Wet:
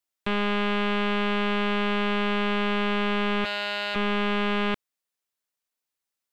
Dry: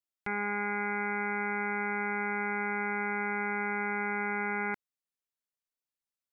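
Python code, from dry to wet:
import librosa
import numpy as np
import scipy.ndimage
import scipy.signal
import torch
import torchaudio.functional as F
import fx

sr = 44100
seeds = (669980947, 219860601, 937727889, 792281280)

p1 = fx.low_shelf(x, sr, hz=220.0, db=-6.5)
p2 = 10.0 ** (-33.0 / 20.0) * np.tanh(p1 / 10.0 ** (-33.0 / 20.0))
p3 = p1 + (p2 * librosa.db_to_amplitude(-5.0))
p4 = fx.highpass(p3, sr, hz=150.0, slope=12, at=(3.44, 3.94), fade=0.02)
p5 = fx.doppler_dist(p4, sr, depth_ms=0.75)
y = p5 * librosa.db_to_amplitude(3.0)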